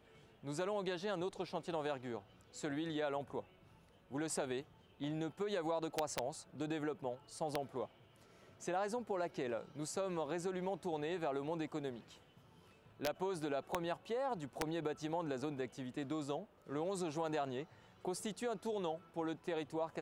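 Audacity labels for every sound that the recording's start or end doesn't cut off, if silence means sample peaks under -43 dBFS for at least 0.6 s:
4.130000	7.850000	sound
8.630000	11.990000	sound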